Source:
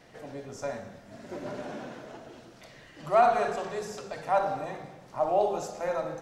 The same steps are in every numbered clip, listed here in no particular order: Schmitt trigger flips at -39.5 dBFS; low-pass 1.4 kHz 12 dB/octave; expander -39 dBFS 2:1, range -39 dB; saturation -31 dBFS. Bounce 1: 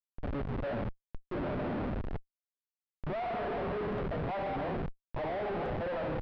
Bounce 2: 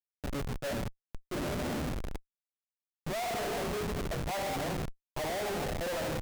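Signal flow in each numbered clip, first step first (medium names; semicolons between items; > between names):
expander > Schmitt trigger > low-pass > saturation; expander > low-pass > Schmitt trigger > saturation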